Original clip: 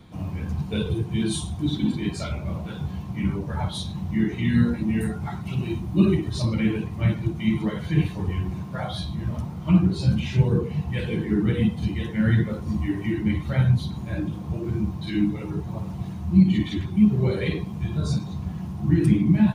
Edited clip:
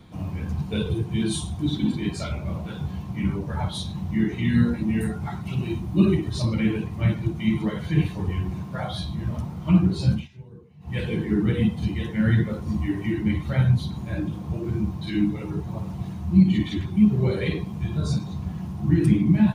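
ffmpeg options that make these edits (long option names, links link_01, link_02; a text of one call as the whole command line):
ffmpeg -i in.wav -filter_complex "[0:a]asplit=3[link_01][link_02][link_03];[link_01]atrim=end=10.28,asetpts=PTS-STARTPTS,afade=type=out:start_time=10.11:duration=0.17:silence=0.0668344[link_04];[link_02]atrim=start=10.28:end=10.8,asetpts=PTS-STARTPTS,volume=-23.5dB[link_05];[link_03]atrim=start=10.8,asetpts=PTS-STARTPTS,afade=type=in:duration=0.17:silence=0.0668344[link_06];[link_04][link_05][link_06]concat=n=3:v=0:a=1" out.wav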